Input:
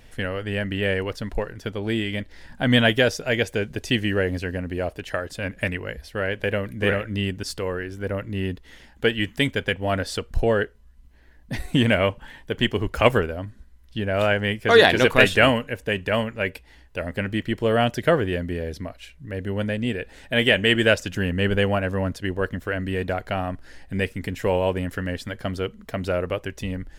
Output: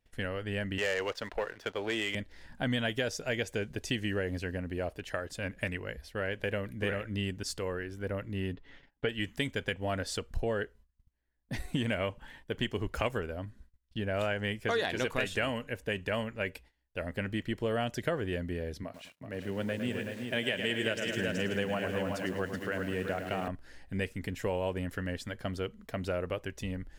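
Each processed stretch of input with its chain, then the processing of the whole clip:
0.78–2.15 three-band isolator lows -17 dB, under 410 Hz, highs -14 dB, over 4500 Hz + sample leveller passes 2
8.53–9.09 LPF 3200 Hz + comb 7.1 ms, depth 55%
18.83–23.48 HPF 110 Hz 24 dB/oct + echo 0.378 s -7 dB + lo-fi delay 0.107 s, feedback 55%, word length 7-bit, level -8.5 dB
whole clip: gate -45 dBFS, range -22 dB; dynamic EQ 7000 Hz, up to +5 dB, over -47 dBFS, Q 1.7; compressor 6:1, threshold -20 dBFS; gain -7.5 dB

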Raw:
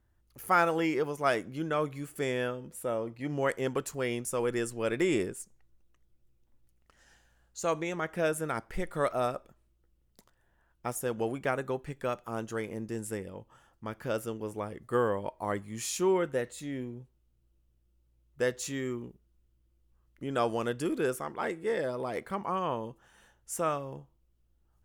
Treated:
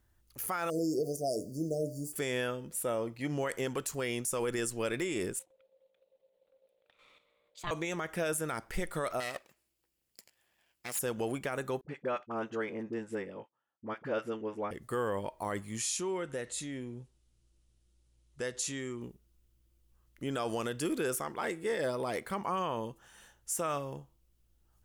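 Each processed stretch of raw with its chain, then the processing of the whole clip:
0.7–2.13 notches 60/120/180/240/300/360/420/480/540/600 Hz + sample gate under -54 dBFS + brick-wall FIR band-stop 730–4500 Hz
5.39–7.71 resonant high shelf 4300 Hz -10.5 dB, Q 3 + level quantiser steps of 9 dB + ring modulator 530 Hz
9.2–10.99 minimum comb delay 0.41 ms + HPF 620 Hz 6 dB/oct
11.81–14.71 gate -54 dBFS, range -25 dB + BPF 190–2300 Hz + dispersion highs, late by 42 ms, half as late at 580 Hz
15.77–19.02 compressor 2:1, threshold -39 dBFS + careless resampling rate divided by 2×, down none, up filtered
whole clip: high shelf 2600 Hz +8.5 dB; limiter -24 dBFS

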